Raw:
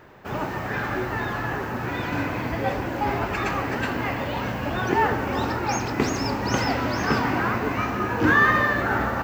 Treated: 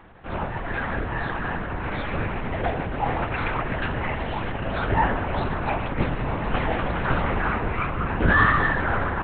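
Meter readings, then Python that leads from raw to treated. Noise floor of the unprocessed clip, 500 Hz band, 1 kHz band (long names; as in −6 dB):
−31 dBFS, −1.5 dB, −1.0 dB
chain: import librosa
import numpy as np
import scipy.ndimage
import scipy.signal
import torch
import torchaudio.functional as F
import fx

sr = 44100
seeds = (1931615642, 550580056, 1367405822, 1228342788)

y = fx.lpc_vocoder(x, sr, seeds[0], excitation='whisper', order=8)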